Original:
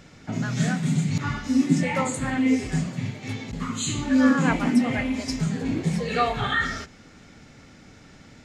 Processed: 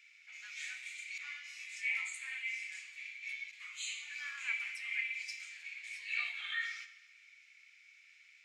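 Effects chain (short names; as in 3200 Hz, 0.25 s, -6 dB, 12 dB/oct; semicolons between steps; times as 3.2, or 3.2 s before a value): ladder high-pass 2200 Hz, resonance 80%; Schroeder reverb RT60 1 s, combs from 27 ms, DRR 10.5 dB; gain -3 dB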